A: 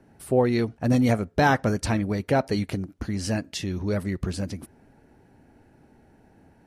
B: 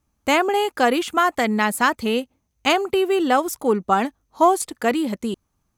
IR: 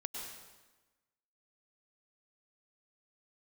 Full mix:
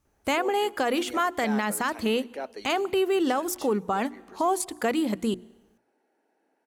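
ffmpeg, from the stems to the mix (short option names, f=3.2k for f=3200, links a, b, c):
-filter_complex "[0:a]highpass=f=320:w=0.5412,highpass=f=320:w=1.3066,adelay=50,volume=-11.5dB[a];[1:a]alimiter=limit=-12.5dB:level=0:latency=1,volume=-0.5dB,asplit=2[b][c];[c]volume=-23dB[d];[2:a]atrim=start_sample=2205[e];[d][e]afir=irnorm=-1:irlink=0[f];[a][b][f]amix=inputs=3:normalize=0,bandreject=f=60:t=h:w=6,bandreject=f=120:t=h:w=6,bandreject=f=180:t=h:w=6,bandreject=f=240:t=h:w=6,bandreject=f=300:t=h:w=6,bandreject=f=360:t=h:w=6,alimiter=limit=-16.5dB:level=0:latency=1:release=299"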